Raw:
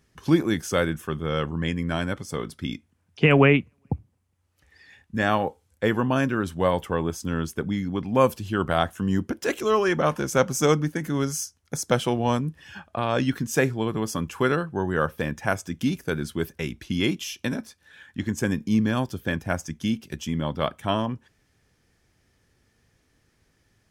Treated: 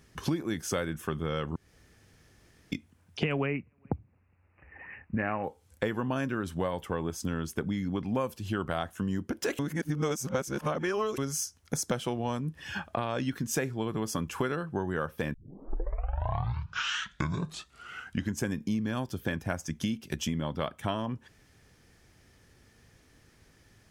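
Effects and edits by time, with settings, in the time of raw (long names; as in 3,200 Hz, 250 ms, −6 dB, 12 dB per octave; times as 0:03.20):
0:01.56–0:02.72: fill with room tone
0:03.46–0:05.44: bad sample-rate conversion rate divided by 8×, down none, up filtered
0:09.59–0:11.18: reverse
0:15.34: tape start 3.08 s
whole clip: downward compressor 6 to 1, threshold −34 dBFS; level +5.5 dB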